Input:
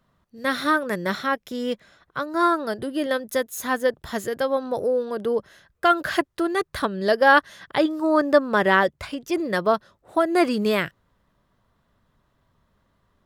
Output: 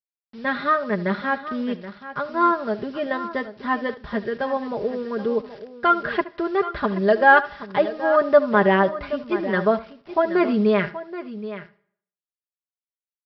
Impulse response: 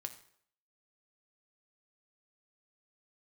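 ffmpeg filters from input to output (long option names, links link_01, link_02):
-filter_complex "[0:a]lowpass=2400,lowshelf=frequency=140:gain=4,aecho=1:1:4.9:0.72,aresample=11025,acrusher=bits=7:mix=0:aa=0.000001,aresample=44100,aecho=1:1:776:0.211,asplit=2[link_01][link_02];[1:a]atrim=start_sample=2205,adelay=73[link_03];[link_02][link_03]afir=irnorm=-1:irlink=0,volume=-13.5dB[link_04];[link_01][link_04]amix=inputs=2:normalize=0,volume=-1dB"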